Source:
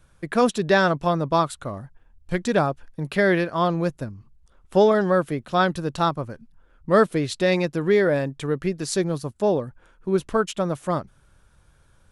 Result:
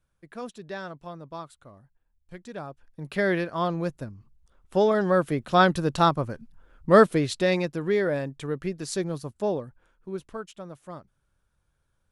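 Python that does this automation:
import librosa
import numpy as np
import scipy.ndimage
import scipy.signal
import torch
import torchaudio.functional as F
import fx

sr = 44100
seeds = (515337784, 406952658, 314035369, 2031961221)

y = fx.gain(x, sr, db=fx.line((2.54, -18.0), (3.2, -5.0), (4.81, -5.0), (5.49, 1.5), (6.98, 1.5), (7.81, -5.5), (9.45, -5.5), (10.51, -16.0)))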